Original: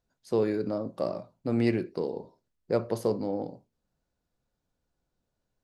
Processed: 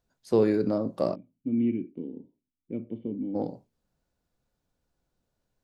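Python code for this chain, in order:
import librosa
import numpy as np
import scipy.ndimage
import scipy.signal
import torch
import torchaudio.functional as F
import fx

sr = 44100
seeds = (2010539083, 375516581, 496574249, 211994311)

y = fx.dynamic_eq(x, sr, hz=230.0, q=0.84, threshold_db=-38.0, ratio=4.0, max_db=4)
y = fx.formant_cascade(y, sr, vowel='i', at=(1.14, 3.34), fade=0.02)
y = y * librosa.db_to_amplitude(2.0)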